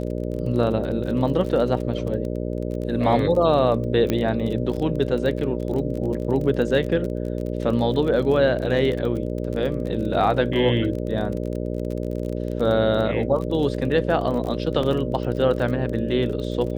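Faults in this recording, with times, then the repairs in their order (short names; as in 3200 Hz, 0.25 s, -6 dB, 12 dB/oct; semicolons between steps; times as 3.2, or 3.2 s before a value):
buzz 60 Hz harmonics 10 -27 dBFS
crackle 28/s -29 dBFS
4.1 pop -9 dBFS
14.83 gap 3 ms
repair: de-click; de-hum 60 Hz, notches 10; interpolate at 14.83, 3 ms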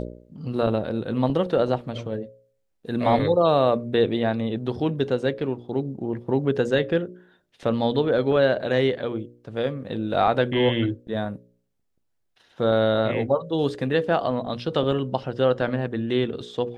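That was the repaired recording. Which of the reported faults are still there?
none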